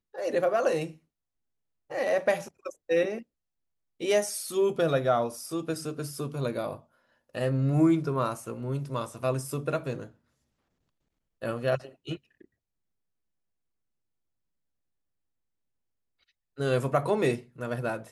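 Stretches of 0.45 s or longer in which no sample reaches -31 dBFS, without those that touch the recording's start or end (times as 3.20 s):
0.86–1.92 s
3.18–4.02 s
6.74–7.35 s
10.04–11.43 s
12.15–16.60 s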